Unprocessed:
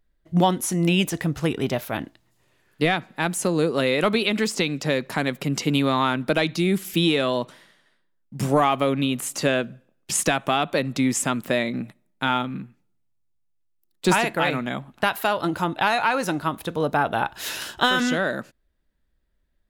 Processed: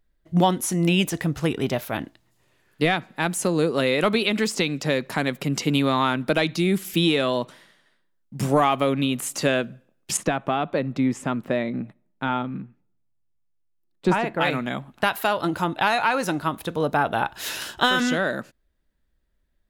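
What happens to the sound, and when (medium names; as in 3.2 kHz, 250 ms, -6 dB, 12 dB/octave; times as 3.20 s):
10.17–14.41 s: low-pass 1.2 kHz 6 dB/octave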